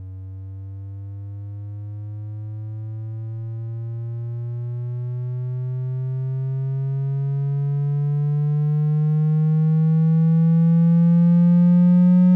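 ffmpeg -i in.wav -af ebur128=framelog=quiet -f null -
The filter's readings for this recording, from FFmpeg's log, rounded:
Integrated loudness:
  I:         -19.8 LUFS
  Threshold: -31.0 LUFS
Loudness range:
  LRA:        15.4 LU
  Threshold: -42.1 LUFS
  LRA low:   -32.2 LUFS
  LRA high:  -16.8 LUFS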